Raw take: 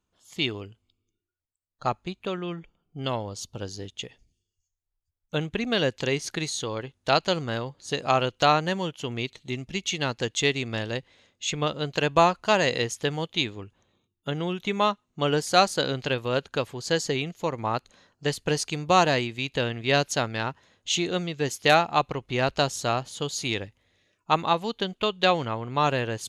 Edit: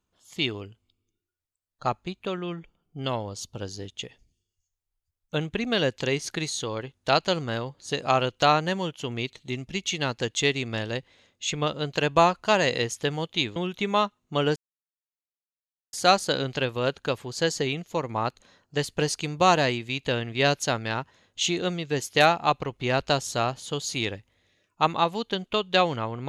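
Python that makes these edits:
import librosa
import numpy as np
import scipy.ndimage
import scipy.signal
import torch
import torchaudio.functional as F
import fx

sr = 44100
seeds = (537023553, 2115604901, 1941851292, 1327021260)

y = fx.edit(x, sr, fx.cut(start_s=13.56, length_s=0.86),
    fx.insert_silence(at_s=15.42, length_s=1.37), tone=tone)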